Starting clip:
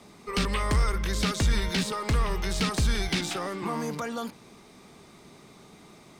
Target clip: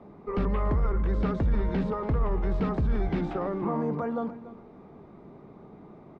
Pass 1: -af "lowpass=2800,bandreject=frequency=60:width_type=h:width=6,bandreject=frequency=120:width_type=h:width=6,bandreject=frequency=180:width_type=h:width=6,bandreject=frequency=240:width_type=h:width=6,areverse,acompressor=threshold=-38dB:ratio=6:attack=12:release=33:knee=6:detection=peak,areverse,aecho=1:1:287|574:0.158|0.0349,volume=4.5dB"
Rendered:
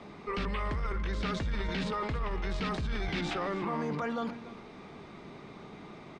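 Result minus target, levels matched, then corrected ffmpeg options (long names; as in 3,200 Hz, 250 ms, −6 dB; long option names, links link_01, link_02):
2,000 Hz band +11.0 dB; downward compressor: peak gain reduction +9 dB
-af "lowpass=860,bandreject=frequency=60:width_type=h:width=6,bandreject=frequency=120:width_type=h:width=6,bandreject=frequency=180:width_type=h:width=6,bandreject=frequency=240:width_type=h:width=6,areverse,acompressor=threshold=-27.5dB:ratio=6:attack=12:release=33:knee=6:detection=peak,areverse,aecho=1:1:287|574:0.158|0.0349,volume=4.5dB"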